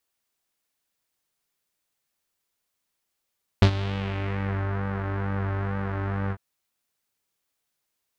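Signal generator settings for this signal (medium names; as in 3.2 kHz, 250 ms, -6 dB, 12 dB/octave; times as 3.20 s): synth patch with pulse-width modulation G2, detune 20 cents, filter lowpass, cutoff 1.5 kHz, Q 2, filter envelope 1.5 oct, filter decay 1.05 s, filter sustain 5%, attack 2.8 ms, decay 0.08 s, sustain -14.5 dB, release 0.06 s, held 2.69 s, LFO 2.2 Hz, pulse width 35%, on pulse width 7%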